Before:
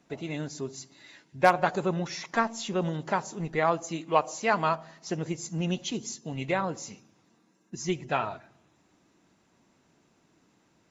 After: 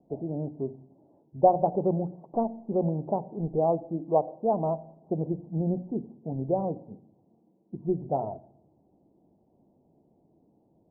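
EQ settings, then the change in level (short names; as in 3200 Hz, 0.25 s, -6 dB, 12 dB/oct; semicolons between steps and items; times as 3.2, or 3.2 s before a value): steep low-pass 800 Hz 48 dB/oct; notches 60/120/180/240/300 Hz; +3.0 dB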